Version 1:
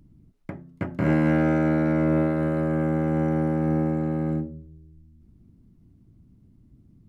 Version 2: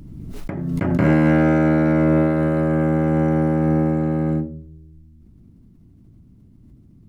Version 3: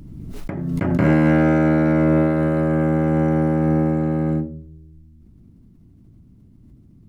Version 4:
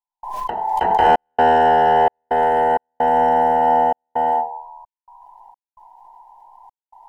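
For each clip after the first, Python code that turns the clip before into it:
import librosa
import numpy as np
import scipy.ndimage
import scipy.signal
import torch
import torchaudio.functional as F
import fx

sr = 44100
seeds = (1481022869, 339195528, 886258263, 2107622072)

y1 = fx.pre_swell(x, sr, db_per_s=28.0)
y1 = y1 * 10.0 ** (5.0 / 20.0)
y2 = y1
y3 = fx.band_invert(y2, sr, width_hz=1000)
y3 = fx.step_gate(y3, sr, bpm=65, pattern='.xxxx.xxx.xx', floor_db=-60.0, edge_ms=4.5)
y3 = y3 * 10.0 ** (2.5 / 20.0)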